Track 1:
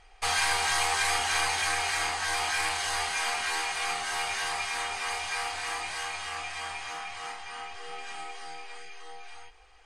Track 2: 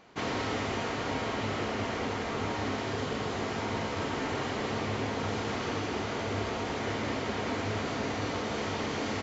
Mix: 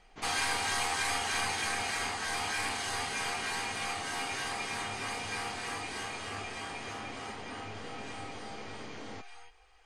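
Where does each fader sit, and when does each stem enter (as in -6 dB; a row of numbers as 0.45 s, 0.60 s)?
-5.0 dB, -12.5 dB; 0.00 s, 0.00 s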